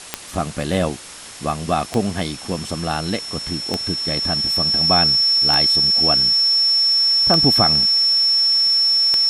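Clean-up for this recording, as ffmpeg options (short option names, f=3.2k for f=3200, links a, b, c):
-af "adeclick=t=4,bandreject=f=5.4k:w=30,afftdn=nr=30:nf=-34"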